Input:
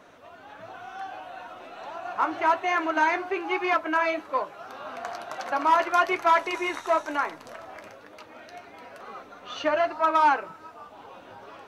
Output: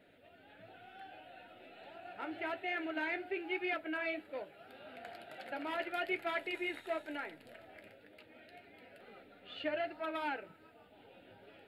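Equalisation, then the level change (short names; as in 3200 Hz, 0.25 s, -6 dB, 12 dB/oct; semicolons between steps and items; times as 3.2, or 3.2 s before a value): fixed phaser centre 2600 Hz, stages 4; -8.0 dB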